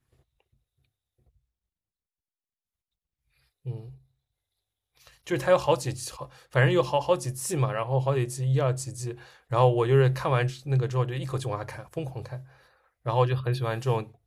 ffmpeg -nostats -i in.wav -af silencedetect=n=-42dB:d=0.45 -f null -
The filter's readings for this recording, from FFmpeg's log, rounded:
silence_start: 0.00
silence_end: 3.66 | silence_duration: 3.66
silence_start: 3.94
silence_end: 4.97 | silence_duration: 1.04
silence_start: 12.43
silence_end: 13.06 | silence_duration: 0.63